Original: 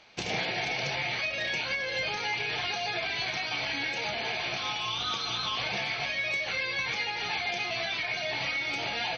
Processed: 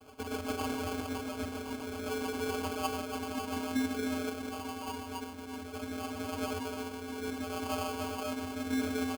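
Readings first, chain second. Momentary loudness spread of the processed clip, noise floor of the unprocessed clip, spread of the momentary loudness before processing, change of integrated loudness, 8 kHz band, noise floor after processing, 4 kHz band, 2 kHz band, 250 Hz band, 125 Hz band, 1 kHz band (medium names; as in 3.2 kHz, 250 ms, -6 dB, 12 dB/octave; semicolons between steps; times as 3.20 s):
7 LU, -34 dBFS, 1 LU, -7.0 dB, no reading, -43 dBFS, -14.0 dB, -14.0 dB, +10.5 dB, -1.5 dB, -4.0 dB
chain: one-bit delta coder 16 kbps, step -46 dBFS; comb 2.7 ms, depth 85%; random-step tremolo 2.1 Hz; vocoder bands 16, square 86.8 Hz; rotary cabinet horn 7.5 Hz, later 0.65 Hz, at 2.36 s; delay 284 ms -6.5 dB; sample-rate reducer 1.9 kHz, jitter 0%; trim +6 dB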